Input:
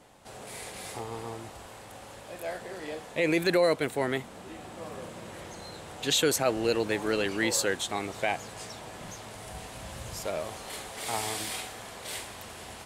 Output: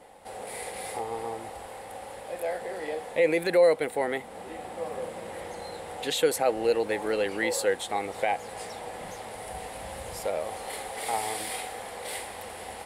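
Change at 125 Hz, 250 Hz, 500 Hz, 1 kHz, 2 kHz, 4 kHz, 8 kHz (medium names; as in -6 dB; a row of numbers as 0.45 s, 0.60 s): -6.0 dB, -3.5 dB, +3.5 dB, +4.0 dB, -0.5 dB, -3.5 dB, -2.5 dB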